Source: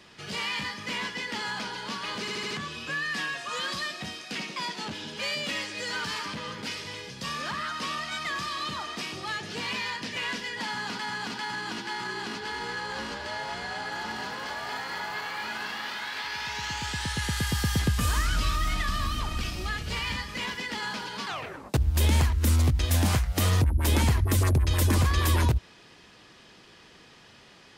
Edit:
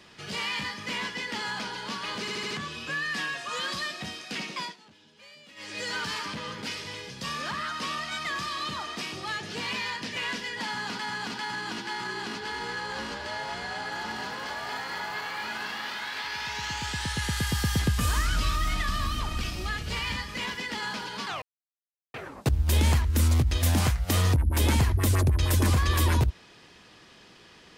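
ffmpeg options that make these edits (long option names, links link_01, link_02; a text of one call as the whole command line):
ffmpeg -i in.wav -filter_complex "[0:a]asplit=4[link_01][link_02][link_03][link_04];[link_01]atrim=end=4.78,asetpts=PTS-STARTPTS,afade=type=out:start_time=4.59:duration=0.19:silence=0.1[link_05];[link_02]atrim=start=4.78:end=5.56,asetpts=PTS-STARTPTS,volume=-20dB[link_06];[link_03]atrim=start=5.56:end=21.42,asetpts=PTS-STARTPTS,afade=type=in:duration=0.19:silence=0.1,afade=type=out:start_time=15.856:duration=0.004:curve=hsin,apad=pad_dur=0.72[link_07];[link_04]atrim=start=21.42,asetpts=PTS-STARTPTS,afade=type=in:duration=0.004:curve=hsin[link_08];[link_05][link_06][link_07][link_08]concat=n=4:v=0:a=1" out.wav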